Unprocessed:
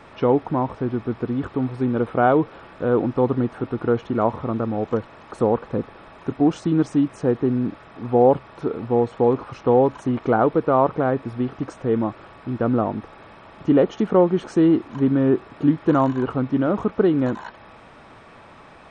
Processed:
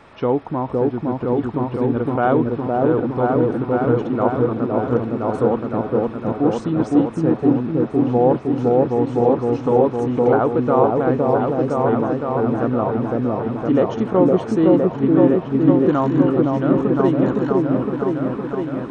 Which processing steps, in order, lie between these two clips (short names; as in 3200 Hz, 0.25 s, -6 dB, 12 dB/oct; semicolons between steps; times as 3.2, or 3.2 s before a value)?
repeats that get brighter 0.512 s, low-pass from 750 Hz, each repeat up 1 oct, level 0 dB; gain -1 dB